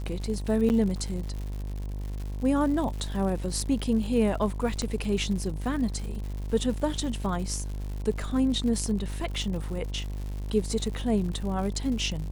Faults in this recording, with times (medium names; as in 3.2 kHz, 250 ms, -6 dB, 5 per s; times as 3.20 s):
buzz 50 Hz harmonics 22 -33 dBFS
crackle 150 per s -35 dBFS
0.69–0.70 s: dropout 9.5 ms
3.61 s: dropout 2.2 ms
4.82 s: pop -19 dBFS